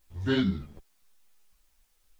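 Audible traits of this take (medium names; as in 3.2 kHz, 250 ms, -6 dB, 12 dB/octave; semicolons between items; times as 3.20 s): chopped level 0.98 Hz, depth 65%, duty 80%; a quantiser's noise floor 12-bit, dither triangular; a shimmering, thickened sound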